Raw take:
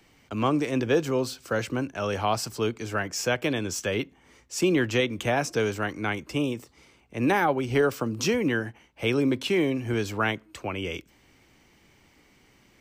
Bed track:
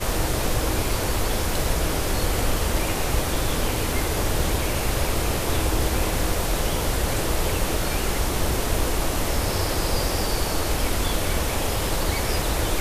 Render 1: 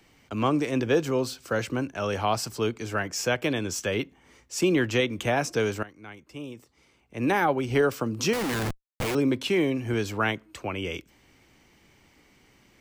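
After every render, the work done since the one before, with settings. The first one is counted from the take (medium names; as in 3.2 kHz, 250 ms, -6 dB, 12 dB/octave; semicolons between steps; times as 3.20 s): 5.83–7.44 s: fade in quadratic, from -16.5 dB; 8.33–9.15 s: Schmitt trigger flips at -38 dBFS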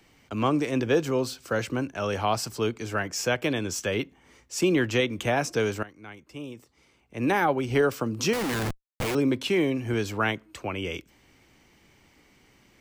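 no audible change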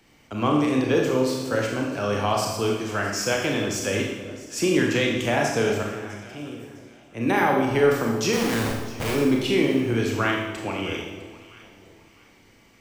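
echo whose repeats swap between lows and highs 327 ms, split 850 Hz, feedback 56%, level -12.5 dB; Schroeder reverb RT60 1 s, combs from 27 ms, DRR -0.5 dB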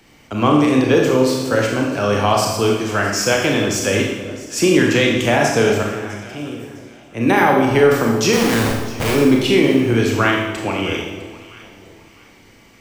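trim +7.5 dB; peak limiter -3 dBFS, peak gain reduction 3 dB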